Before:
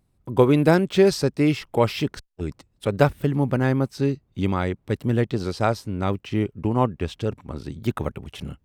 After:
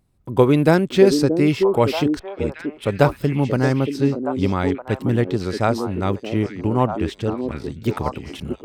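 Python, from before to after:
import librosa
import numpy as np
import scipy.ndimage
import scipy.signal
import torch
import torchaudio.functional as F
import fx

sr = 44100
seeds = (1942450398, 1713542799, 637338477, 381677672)

y = fx.echo_stepped(x, sr, ms=628, hz=330.0, octaves=1.4, feedback_pct=70, wet_db=-2.5)
y = F.gain(torch.from_numpy(y), 2.0).numpy()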